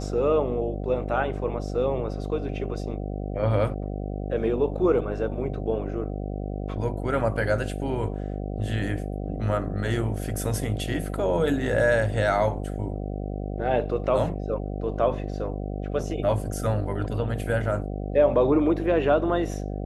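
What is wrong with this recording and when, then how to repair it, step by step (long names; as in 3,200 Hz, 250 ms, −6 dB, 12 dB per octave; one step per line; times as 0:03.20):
mains buzz 50 Hz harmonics 15 −31 dBFS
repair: hum removal 50 Hz, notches 15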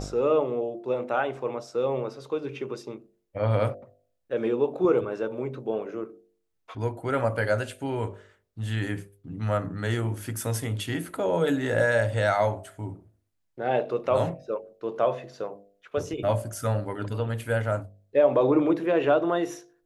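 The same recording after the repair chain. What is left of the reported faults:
none of them is left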